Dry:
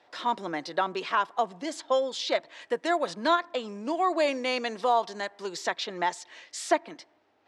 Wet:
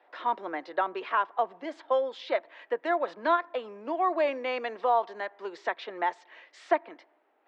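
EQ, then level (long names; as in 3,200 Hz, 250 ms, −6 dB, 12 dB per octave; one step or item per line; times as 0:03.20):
high-pass filter 190 Hz
high-frequency loss of the air 74 metres
three-way crossover with the lows and the highs turned down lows −18 dB, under 280 Hz, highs −19 dB, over 2,900 Hz
0.0 dB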